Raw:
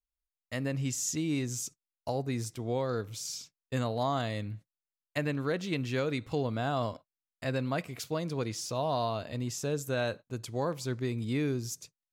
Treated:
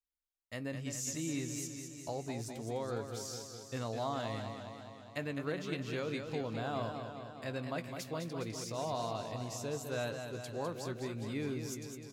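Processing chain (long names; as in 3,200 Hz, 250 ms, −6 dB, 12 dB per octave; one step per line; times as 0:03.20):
low-shelf EQ 150 Hz −3.5 dB
double-tracking delay 18 ms −13 dB
feedback echo with a swinging delay time 206 ms, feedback 66%, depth 70 cents, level −7 dB
level −6.5 dB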